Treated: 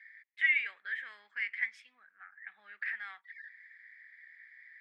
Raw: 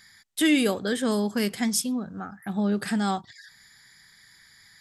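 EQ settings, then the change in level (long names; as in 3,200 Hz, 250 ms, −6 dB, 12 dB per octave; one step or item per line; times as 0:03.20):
flat-topped band-pass 2,000 Hz, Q 3.6
+4.5 dB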